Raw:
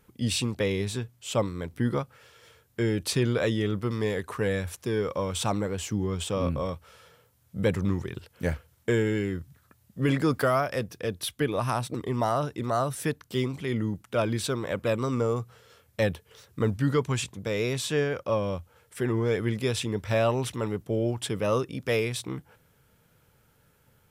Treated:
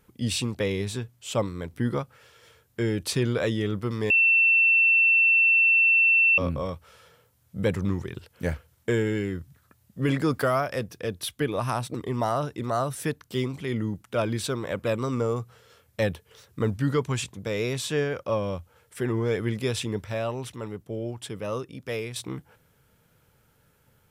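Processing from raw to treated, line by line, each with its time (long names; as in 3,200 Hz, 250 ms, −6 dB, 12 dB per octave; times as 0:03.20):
0:04.10–0:06.38: beep over 2,690 Hz −16 dBFS
0:20.05–0:22.16: clip gain −5.5 dB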